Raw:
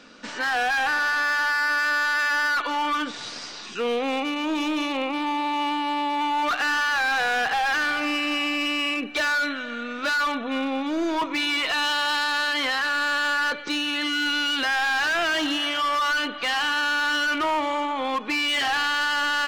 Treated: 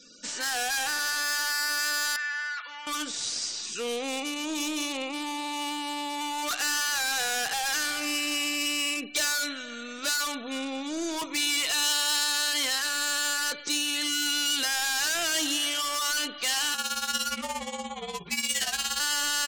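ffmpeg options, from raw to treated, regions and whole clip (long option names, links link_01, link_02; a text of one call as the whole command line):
ffmpeg -i in.wav -filter_complex "[0:a]asettb=1/sr,asplit=3[link_01][link_02][link_03];[link_01]atrim=end=2.164[link_04];[link_02]atrim=start=2.16:end=2.87,asetpts=PTS-STARTPTS,afade=type=in:duration=0.004:curve=qsin,afade=type=out:start_time=0.706:duration=0.004:curve=qsin,bandpass=frequency=1800:width_type=q:width=2.1,asplit=2[link_05][link_06];[link_06]adelay=32,volume=-12.5dB[link_07];[link_05][link_07]amix=inputs=2:normalize=0,atrim=end_sample=31311[link_08];[link_03]atrim=start=2.866[link_09];[link_04][link_08]acrossfade=duration=0.004:curve1=hsin:curve2=qsin[link_10];[link_10][link_09]acrossfade=duration=0.004:curve1=qsin:curve2=hsin,asettb=1/sr,asplit=3[link_11][link_12][link_13];[link_11]atrim=end=16.744[link_14];[link_12]atrim=start=16.74:end=19,asetpts=PTS-STARTPTS,afade=type=in:duration=0.004:curve=qsin,afade=type=out:start_time=2.256:duration=0.004:curve=qsin,tremolo=f=17:d=0.88,afreqshift=-61,asplit=2[link_15][link_16];[link_16]adelay=17,volume=-5dB[link_17];[link_15][link_17]amix=inputs=2:normalize=0,atrim=end_sample=99666[link_18];[link_13]atrim=start=18.996[link_19];[link_14][link_18]acrossfade=duration=0.004:curve1=hsin:curve2=qsin[link_20];[link_20][link_19]acrossfade=duration=0.004:curve1=qsin:curve2=hsin,firequalizer=gain_entry='entry(120,0);entry(220,-6);entry(1000,-13);entry(7200,11)':delay=0.05:min_phase=1,afftfilt=real='re*gte(hypot(re,im),0.00251)':imag='im*gte(hypot(re,im),0.00251)':win_size=1024:overlap=0.75,lowshelf=frequency=200:gain=-10.5,volume=3dB" out.wav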